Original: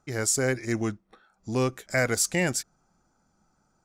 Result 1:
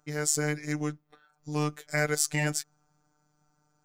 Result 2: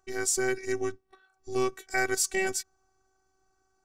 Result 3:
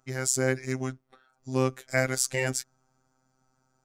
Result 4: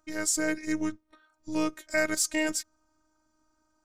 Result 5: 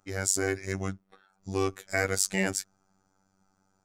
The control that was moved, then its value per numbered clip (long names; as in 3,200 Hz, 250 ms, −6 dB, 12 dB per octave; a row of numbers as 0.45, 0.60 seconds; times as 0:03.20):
phases set to zero, frequency: 150, 380, 130, 310, 96 Hertz